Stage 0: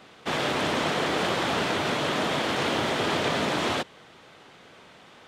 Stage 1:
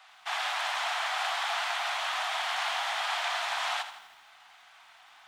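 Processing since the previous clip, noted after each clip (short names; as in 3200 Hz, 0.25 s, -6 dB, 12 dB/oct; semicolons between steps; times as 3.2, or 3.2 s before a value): elliptic high-pass 720 Hz, stop band 40 dB; on a send at -16.5 dB: reverb RT60 1.2 s, pre-delay 6 ms; on the sum: lo-fi delay 81 ms, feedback 55%, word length 9-bit, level -11 dB; gain -2.5 dB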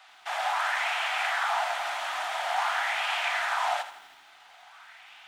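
notch 1100 Hz, Q 13; dynamic EQ 3900 Hz, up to -6 dB, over -49 dBFS, Q 0.84; LFO bell 0.48 Hz 300–2700 Hz +9 dB; gain +1.5 dB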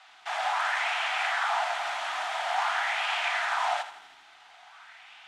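LPF 8800 Hz 12 dB/oct; notch 550 Hz, Q 12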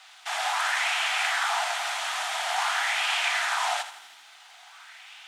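RIAA curve recording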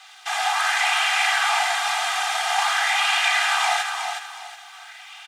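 comb 2.5 ms, depth 63%; feedback echo 0.366 s, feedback 30%, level -6 dB; gain +3 dB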